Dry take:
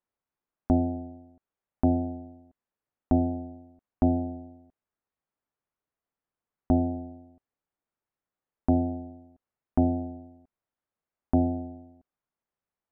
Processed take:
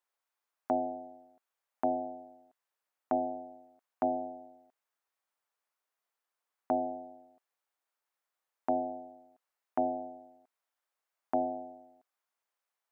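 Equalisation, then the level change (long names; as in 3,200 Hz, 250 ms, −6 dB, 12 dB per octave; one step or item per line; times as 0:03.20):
high-pass filter 710 Hz 12 dB per octave
+4.5 dB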